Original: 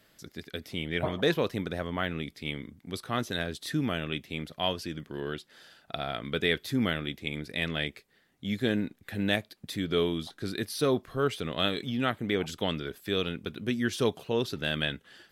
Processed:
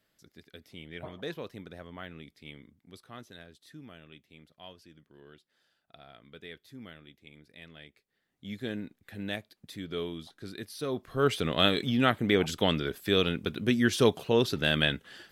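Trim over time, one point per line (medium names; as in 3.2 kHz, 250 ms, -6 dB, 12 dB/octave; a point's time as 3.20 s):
2.67 s -12 dB
3.60 s -19 dB
7.88 s -19 dB
8.45 s -8 dB
10.87 s -8 dB
11.31 s +4 dB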